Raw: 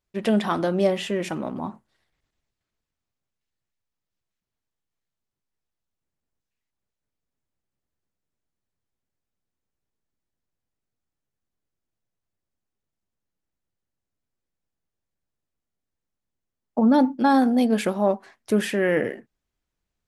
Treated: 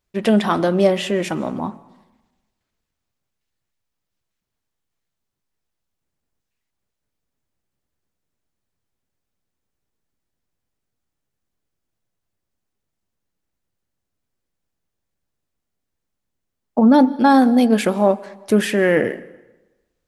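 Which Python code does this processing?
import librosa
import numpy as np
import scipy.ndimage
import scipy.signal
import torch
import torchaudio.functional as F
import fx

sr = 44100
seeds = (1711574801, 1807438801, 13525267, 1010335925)

y = fx.rev_plate(x, sr, seeds[0], rt60_s=1.1, hf_ratio=0.8, predelay_ms=115, drr_db=20.0)
y = F.gain(torch.from_numpy(y), 5.5).numpy()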